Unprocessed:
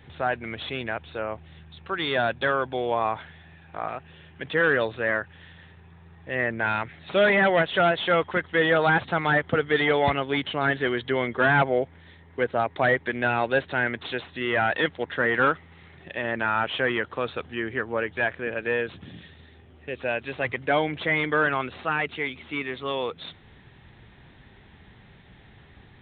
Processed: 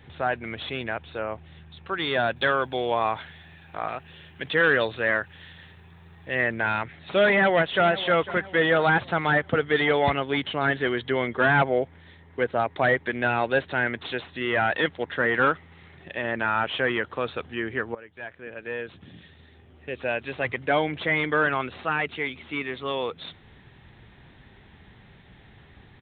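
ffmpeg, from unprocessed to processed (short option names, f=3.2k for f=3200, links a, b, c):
-filter_complex "[0:a]asettb=1/sr,asplit=3[a][b][c];[a]atrim=end=2.364[d];[b]atrim=start=2.36:end=6.62,asetpts=PTS-STARTPTS,afade=t=in:d=0.004:c=qsin,afade=t=out:st=4.256:d=0.004:c=qsin,highshelf=f=3.8k:g=12[e];[c]atrim=start=6.616[f];[d][e]acrossfade=d=0.004:c1=hsin:c2=qsin[g];[g][f]acrossfade=d=0.004:c1=qsin:c2=hsin,asplit=2[h][i];[i]afade=t=in:st=7.28:d=0.01,afade=t=out:st=7.84:d=0.01,aecho=0:1:500|1000|1500|2000:0.16788|0.0755462|0.0339958|0.0152981[j];[h][j]amix=inputs=2:normalize=0,asplit=2[k][l];[k]atrim=end=17.95,asetpts=PTS-STARTPTS,afade=t=out:st=17.946:d=0.004:c=hsin:silence=0.0944061[m];[l]atrim=start=17.95,asetpts=PTS-STARTPTS,afade=t=in:d=1.98:silence=0.0944061[n];[m][n]concat=n=2:v=0:a=1"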